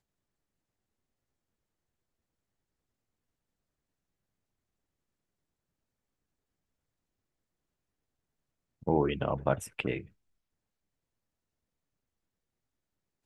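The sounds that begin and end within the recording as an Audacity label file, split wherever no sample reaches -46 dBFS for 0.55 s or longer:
8.830000	10.060000	sound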